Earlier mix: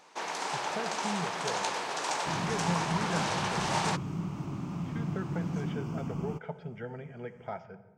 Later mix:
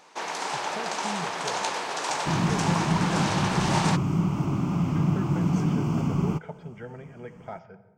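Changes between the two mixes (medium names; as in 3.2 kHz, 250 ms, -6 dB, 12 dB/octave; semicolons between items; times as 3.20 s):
first sound +3.5 dB; second sound +10.5 dB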